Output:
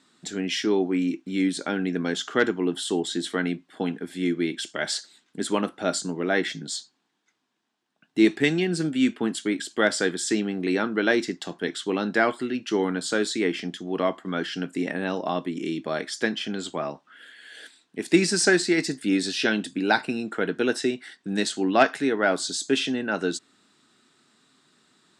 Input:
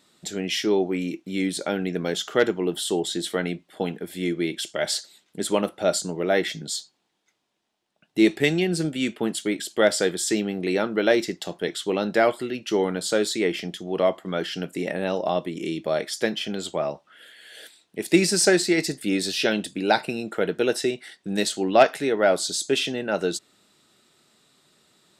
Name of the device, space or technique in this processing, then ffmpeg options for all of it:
car door speaker: -af "highpass=93,equalizer=frequency=260:width_type=q:width=4:gain=8,equalizer=frequency=570:width_type=q:width=4:gain=-6,equalizer=frequency=1100:width_type=q:width=4:gain=4,equalizer=frequency=1600:width_type=q:width=4:gain=6,lowpass=frequency=9300:width=0.5412,lowpass=frequency=9300:width=1.3066,volume=-2dB"

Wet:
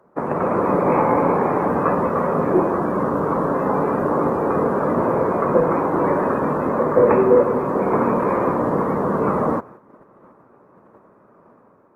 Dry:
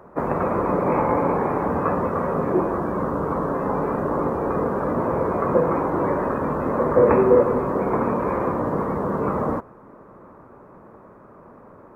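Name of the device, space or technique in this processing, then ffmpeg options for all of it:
video call: -af "highpass=120,dynaudnorm=framelen=110:gausssize=7:maxgain=4dB,agate=range=-9dB:threshold=-40dB:ratio=16:detection=peak" -ar 48000 -c:a libopus -b:a 24k

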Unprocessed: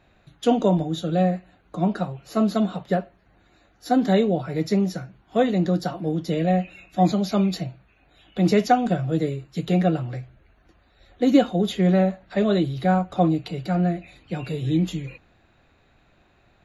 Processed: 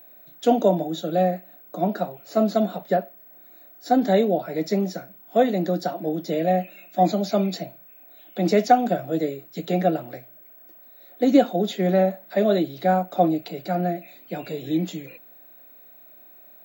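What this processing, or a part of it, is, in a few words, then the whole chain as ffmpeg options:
old television with a line whistle: -af "highpass=frequency=200:width=0.5412,highpass=frequency=200:width=1.3066,equalizer=frequency=640:width_type=q:width=4:gain=7,equalizer=frequency=1100:width_type=q:width=4:gain=-6,equalizer=frequency=2900:width_type=q:width=4:gain=-5,lowpass=frequency=9000:width=0.5412,lowpass=frequency=9000:width=1.3066,aeval=exprs='val(0)+0.00501*sin(2*PI*15734*n/s)':channel_layout=same"

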